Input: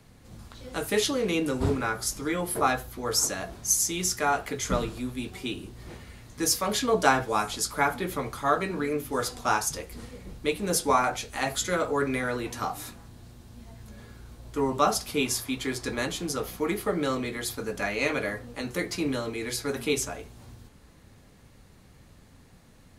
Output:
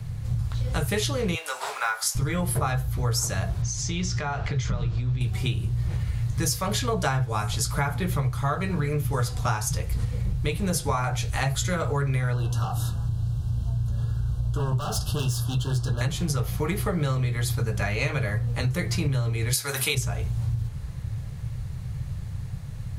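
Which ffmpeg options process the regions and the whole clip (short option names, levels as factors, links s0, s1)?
-filter_complex "[0:a]asettb=1/sr,asplit=3[s0][s1][s2];[s0]atrim=end=1.354[s3];[s1]atrim=start=1.35:end=2.15,asetpts=PTS-STARTPTS,afade=t=in:d=0.004:c=qsin,afade=t=out:st=0.796:d=0.004:c=qsin,highpass=f=710:w=0.5412,highpass=f=710:w=1.3066,acrusher=bits=8:mode=log:mix=0:aa=0.000001,asplit=2[s4][s5];[s5]adelay=20,volume=0.299[s6];[s4][s6]amix=inputs=2:normalize=0,atrim=end_sample=35280[s7];[s2]atrim=start=2.146[s8];[s3][s7]acrossfade=d=0.004:c1=hsin:c2=qsin[s9];[s9][s8]acrossfade=d=0.004:c1=qsin:c2=hsin,asettb=1/sr,asplit=3[s10][s11][s12];[s10]atrim=end=3.624[s13];[s11]atrim=start=3.62:end=5.21,asetpts=PTS-STARTPTS,afade=t=in:d=0.004:c=qsin,afade=t=out:st=1.586:d=0.004:c=qsin,lowpass=f=5800:w=0.5412,lowpass=f=5800:w=1.3066,acompressor=threshold=0.0158:ratio=3:attack=3.2:release=140:knee=1:detection=peak[s14];[s12]atrim=start=5.206[s15];[s13][s14]acrossfade=d=0.004:c1=hsin:c2=qsin[s16];[s16][s15]acrossfade=d=0.004:c1=qsin:c2=hsin,asettb=1/sr,asplit=3[s17][s18][s19];[s17]atrim=end=12.334[s20];[s18]atrim=start=12.33:end=16.01,asetpts=PTS-STARTPTS,afade=t=in:d=0.004:c=qsin,afade=t=out:st=3.676:d=0.004:c=qsin,highshelf=f=8100:g=-4,volume=28.2,asoftclip=hard,volume=0.0355,asuperstop=centerf=2100:order=20:qfactor=2.1[s21];[s19]atrim=start=16.006[s22];[s20][s21]acrossfade=d=0.004:c1=hsin:c2=qsin[s23];[s23][s22]acrossfade=d=0.004:c1=qsin:c2=hsin,asettb=1/sr,asplit=3[s24][s25][s26];[s24]atrim=end=19.534[s27];[s25]atrim=start=19.53:end=19.95,asetpts=PTS-STARTPTS,afade=t=in:d=0.004:c=qsin,afade=t=out:st=0.416:d=0.004:c=qsin,highpass=f=1100:p=1,highshelf=f=7600:g=10.5,acontrast=30[s28];[s26]atrim=start=19.946[s29];[s27][s28]acrossfade=d=0.004:c1=hsin:c2=qsin[s30];[s30][s29]acrossfade=d=0.004:c1=qsin:c2=hsin,lowshelf=f=180:t=q:w=3:g=12.5,acompressor=threshold=0.0316:ratio=6,volume=2.37"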